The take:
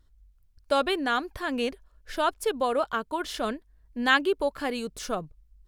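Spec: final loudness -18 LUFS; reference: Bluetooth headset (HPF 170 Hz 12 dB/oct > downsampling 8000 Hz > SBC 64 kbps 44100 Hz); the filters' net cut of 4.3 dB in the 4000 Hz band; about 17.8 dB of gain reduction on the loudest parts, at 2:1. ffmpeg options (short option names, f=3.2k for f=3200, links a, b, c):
-af "equalizer=f=4k:t=o:g=-6,acompressor=threshold=-51dB:ratio=2,highpass=170,aresample=8000,aresample=44100,volume=26dB" -ar 44100 -c:a sbc -b:a 64k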